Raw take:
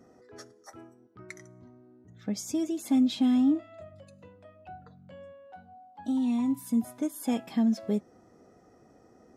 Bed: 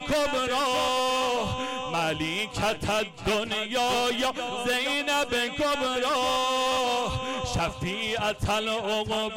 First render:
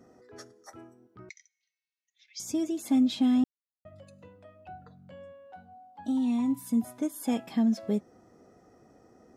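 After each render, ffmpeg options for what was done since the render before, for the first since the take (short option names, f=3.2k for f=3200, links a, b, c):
-filter_complex "[0:a]asettb=1/sr,asplit=3[a][b][c];[a]atrim=end=1.294[d];[b]atrim=start=1.29:end=2.4,asetpts=PTS-STARTPTS,afade=t=in:d=0.004:c=qsin,afade=t=out:st=1.106:d=0.004:c=qsin,asuperpass=centerf=3800:order=12:qfactor=0.85[e];[c]atrim=start=2.396[f];[d][e]acrossfade=d=0.004:c1=hsin:c2=qsin[g];[g][f]acrossfade=d=0.004:c1=qsin:c2=hsin,asplit=3[h][i][j];[h]atrim=end=3.44,asetpts=PTS-STARTPTS,afade=t=out:st=3.436:d=0.004:c=hsin[k];[i]atrim=start=3.44:end=3.85,asetpts=PTS-STARTPTS,volume=0[l];[j]atrim=start=3.85,asetpts=PTS-STARTPTS,afade=t=in:d=0.004:c=hsin[m];[k][l][m]concat=n=3:v=0:a=1"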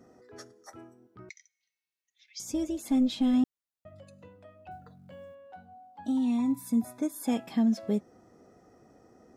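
-filter_complex "[0:a]asettb=1/sr,asplit=3[a][b][c];[a]atrim=end=2.384[d];[b]atrim=start=2.38:end=3.34,asetpts=PTS-STARTPTS,afade=t=in:d=0.004:c=qsin,afade=t=out:st=0.956:d=0.004:c=qsin,tremolo=f=260:d=0.333[e];[c]atrim=start=3.336[f];[d][e]acrossfade=d=0.004:c1=hsin:c2=qsin[g];[g][f]acrossfade=d=0.004:c1=qsin:c2=hsin,asettb=1/sr,asplit=3[h][i][j];[h]atrim=end=4.714[k];[i]atrim=start=4.71:end=5.35,asetpts=PTS-STARTPTS,afade=t=in:d=0.004:c=qsin,afade=t=out:st=0.636:d=0.004:c=qsin,acrusher=bits=9:mode=log:mix=0:aa=0.000001[l];[j]atrim=start=5.346[m];[k][l]acrossfade=d=0.004:c1=hsin:c2=qsin[n];[n][m]acrossfade=d=0.004:c1=qsin:c2=hsin,asettb=1/sr,asplit=3[o][p][q];[o]atrim=end=6.374[r];[p]atrim=start=6.37:end=7.27,asetpts=PTS-STARTPTS,afade=t=in:d=0.004:c=qsin,afade=t=out:st=0.896:d=0.004:c=qsin,asuperstop=centerf=3000:order=12:qfactor=5.1[s];[q]atrim=start=7.266[t];[r][s]acrossfade=d=0.004:c1=hsin:c2=qsin[u];[u][t]acrossfade=d=0.004:c1=qsin:c2=hsin"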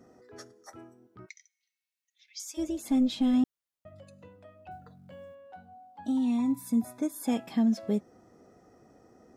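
-filter_complex "[0:a]asplit=3[a][b][c];[a]afade=t=out:st=1.25:d=0.02[d];[b]highpass=1.5k,afade=t=in:st=1.25:d=0.02,afade=t=out:st=2.57:d=0.02[e];[c]afade=t=in:st=2.57:d=0.02[f];[d][e][f]amix=inputs=3:normalize=0"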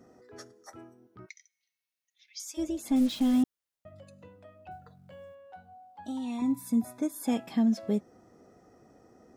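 -filter_complex "[0:a]asettb=1/sr,asplit=3[a][b][c];[a]atrim=end=0.824[d];[b]atrim=start=0.82:end=2.43,asetpts=PTS-STARTPTS,afade=t=in:d=0.004:c=qsin,afade=t=out:st=1.606:d=0.004:c=qsin,bandreject=f=7.6k:w=7.5[e];[c]atrim=start=2.426[f];[d][e]acrossfade=d=0.004:c1=hsin:c2=qsin[g];[g][f]acrossfade=d=0.004:c1=qsin:c2=hsin,asettb=1/sr,asplit=3[h][i][j];[h]atrim=end=2.964[k];[i]atrim=start=2.96:end=3.43,asetpts=PTS-STARTPTS,afade=t=in:d=0.004:c=qsin,afade=t=out:st=0.466:d=0.004:c=qsin,acrusher=bits=6:mix=0:aa=0.5[l];[j]atrim=start=3.426[m];[k][l]acrossfade=d=0.004:c1=hsin:c2=qsin[n];[n][m]acrossfade=d=0.004:c1=qsin:c2=hsin,asettb=1/sr,asplit=3[o][p][q];[o]atrim=end=4.734[r];[p]atrim=start=4.73:end=6.42,asetpts=PTS-STARTPTS,afade=t=in:d=0.004:c=qsin,afade=t=out:st=1.686:d=0.004:c=qsin,equalizer=f=250:w=1.8:g=-8[s];[q]atrim=start=6.416[t];[r][s]acrossfade=d=0.004:c1=hsin:c2=qsin[u];[u][t]acrossfade=d=0.004:c1=qsin:c2=hsin"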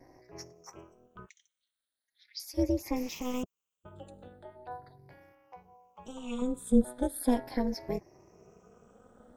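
-af "afftfilt=real='re*pow(10,19/40*sin(2*PI*(0.76*log(max(b,1)*sr/1024/100)/log(2)-(0.39)*(pts-256)/sr)))':imag='im*pow(10,19/40*sin(2*PI*(0.76*log(max(b,1)*sr/1024/100)/log(2)-(0.39)*(pts-256)/sr)))':win_size=1024:overlap=0.75,tremolo=f=250:d=0.947"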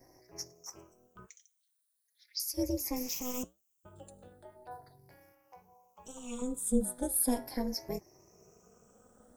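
-af "flanger=delay=1.6:depth=9.3:regen=-79:speed=0.48:shape=sinusoidal,aexciter=amount=6.2:drive=1.4:freq=5k"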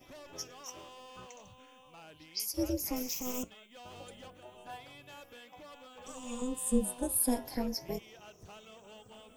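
-filter_complex "[1:a]volume=-26.5dB[a];[0:a][a]amix=inputs=2:normalize=0"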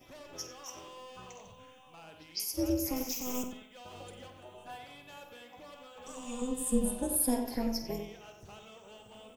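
-filter_complex "[0:a]asplit=2[a][b];[b]adelay=49,volume=-11.5dB[c];[a][c]amix=inputs=2:normalize=0,asplit=2[d][e];[e]adelay=92,lowpass=f=2.9k:p=1,volume=-6.5dB,asplit=2[f][g];[g]adelay=92,lowpass=f=2.9k:p=1,volume=0.32,asplit=2[h][i];[i]adelay=92,lowpass=f=2.9k:p=1,volume=0.32,asplit=2[j][k];[k]adelay=92,lowpass=f=2.9k:p=1,volume=0.32[l];[d][f][h][j][l]amix=inputs=5:normalize=0"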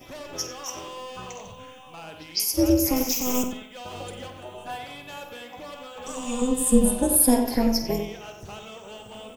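-af "volume=11dB"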